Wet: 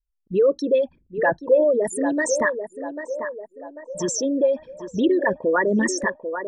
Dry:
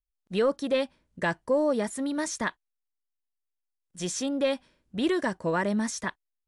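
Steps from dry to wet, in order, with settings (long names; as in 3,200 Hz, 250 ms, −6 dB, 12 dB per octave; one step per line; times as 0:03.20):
spectral envelope exaggerated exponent 3
feedback echo with a band-pass in the loop 793 ms, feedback 54%, band-pass 700 Hz, level −7 dB
level +7 dB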